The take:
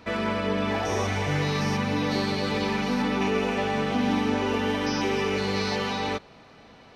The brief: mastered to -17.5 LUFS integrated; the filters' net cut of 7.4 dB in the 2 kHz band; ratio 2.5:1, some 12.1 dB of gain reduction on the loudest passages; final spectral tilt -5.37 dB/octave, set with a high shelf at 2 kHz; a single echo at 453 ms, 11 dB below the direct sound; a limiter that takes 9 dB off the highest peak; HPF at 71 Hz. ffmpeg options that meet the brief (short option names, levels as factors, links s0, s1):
-af "highpass=71,highshelf=f=2000:g=-7,equalizer=f=2000:t=o:g=-5,acompressor=threshold=0.00891:ratio=2.5,alimiter=level_in=3.76:limit=0.0631:level=0:latency=1,volume=0.266,aecho=1:1:453:0.282,volume=20"